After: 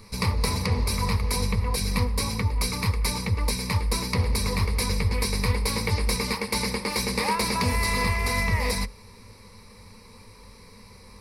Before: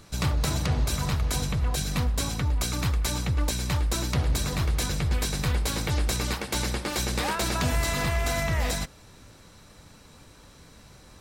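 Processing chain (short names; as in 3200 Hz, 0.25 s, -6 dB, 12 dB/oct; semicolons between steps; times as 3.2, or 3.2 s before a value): ripple EQ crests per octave 0.89, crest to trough 14 dB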